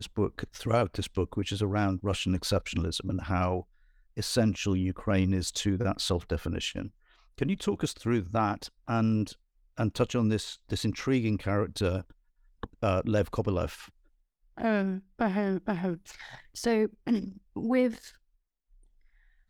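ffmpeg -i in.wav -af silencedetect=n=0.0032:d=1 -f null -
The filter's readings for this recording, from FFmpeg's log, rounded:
silence_start: 18.15
silence_end: 19.50 | silence_duration: 1.35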